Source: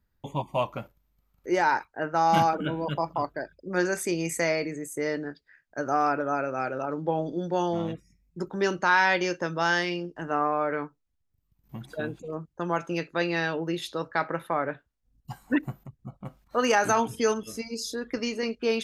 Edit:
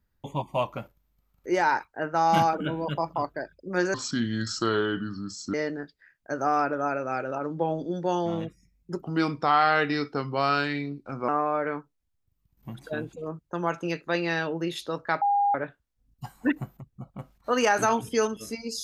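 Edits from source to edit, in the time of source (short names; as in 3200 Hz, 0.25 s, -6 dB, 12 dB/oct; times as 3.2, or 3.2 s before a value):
3.94–5.01 speed 67%
8.49–10.35 speed 82%
14.28–14.61 bleep 810 Hz -19.5 dBFS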